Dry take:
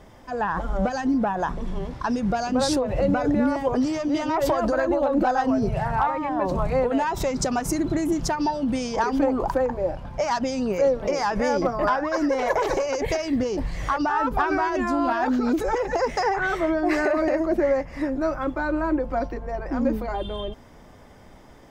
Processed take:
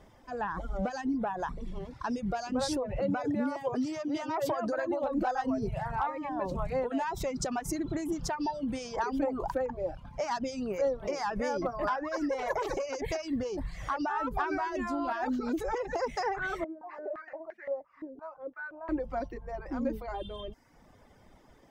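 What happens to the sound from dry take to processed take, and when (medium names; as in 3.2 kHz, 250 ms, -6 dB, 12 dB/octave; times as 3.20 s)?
2.99–5.04 s: high-pass 99 Hz 24 dB/octave
16.64–18.89 s: step-sequenced band-pass 5.8 Hz 400–1900 Hz
whole clip: reverb removal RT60 0.74 s; trim -8 dB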